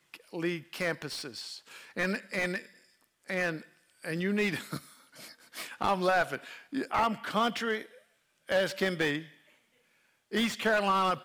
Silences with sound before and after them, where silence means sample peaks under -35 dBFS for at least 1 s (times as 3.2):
9.21–10.33